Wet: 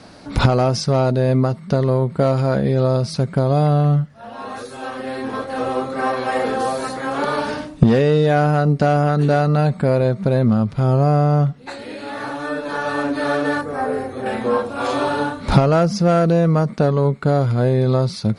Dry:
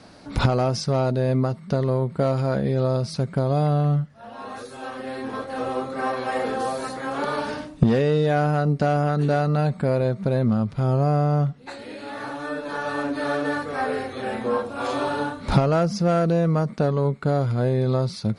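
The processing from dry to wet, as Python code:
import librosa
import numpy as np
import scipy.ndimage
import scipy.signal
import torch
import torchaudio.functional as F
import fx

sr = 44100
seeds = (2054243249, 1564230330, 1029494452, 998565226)

y = fx.peak_eq(x, sr, hz=3300.0, db=-12.0, octaves=2.0, at=(13.61, 14.26))
y = F.gain(torch.from_numpy(y), 5.0).numpy()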